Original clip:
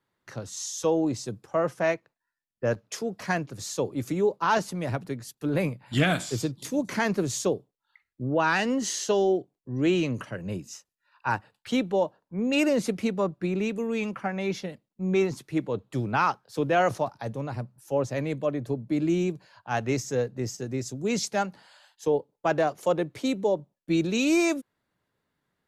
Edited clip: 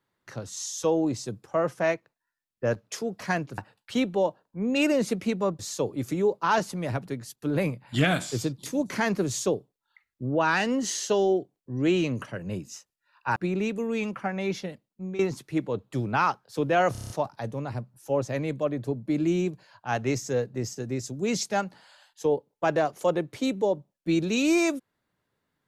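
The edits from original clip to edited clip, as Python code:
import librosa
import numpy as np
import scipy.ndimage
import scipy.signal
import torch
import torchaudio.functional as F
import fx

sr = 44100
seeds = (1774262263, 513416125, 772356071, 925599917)

y = fx.edit(x, sr, fx.move(start_s=11.35, length_s=2.01, to_s=3.58),
    fx.fade_out_to(start_s=14.67, length_s=0.52, curve='qsin', floor_db=-15.5),
    fx.stutter(start_s=16.92, slice_s=0.03, count=7), tone=tone)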